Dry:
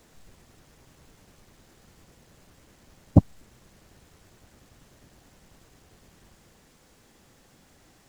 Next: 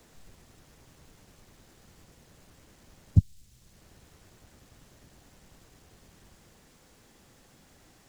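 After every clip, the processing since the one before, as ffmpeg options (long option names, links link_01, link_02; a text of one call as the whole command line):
ffmpeg -i in.wav -filter_complex "[0:a]acrossover=split=160|3000[link_01][link_02][link_03];[link_02]acompressor=threshold=-58dB:ratio=3[link_04];[link_01][link_04][link_03]amix=inputs=3:normalize=0" out.wav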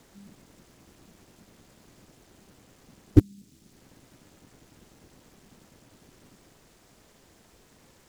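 ffmpeg -i in.wav -filter_complex "[0:a]asplit=2[link_01][link_02];[link_02]acrusher=bits=3:mix=0:aa=0.000001,volume=-10dB[link_03];[link_01][link_03]amix=inputs=2:normalize=0,aeval=exprs='val(0)*sin(2*PI*200*n/s)':channel_layout=same,volume=3.5dB" out.wav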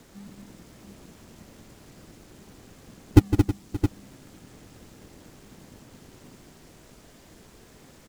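ffmpeg -i in.wav -filter_complex "[0:a]alimiter=limit=-7.5dB:level=0:latency=1:release=71,asplit=2[link_01][link_02];[link_02]acrusher=samples=36:mix=1:aa=0.000001:lfo=1:lforange=21.6:lforate=1.9,volume=-7dB[link_03];[link_01][link_03]amix=inputs=2:normalize=0,aecho=1:1:159|223|320|575|668:0.299|0.473|0.2|0.126|0.335,volume=3dB" out.wav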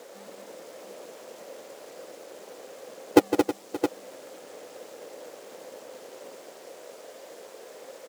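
ffmpeg -i in.wav -af "highpass=frequency=520:width_type=q:width=4.9,volume=4dB" out.wav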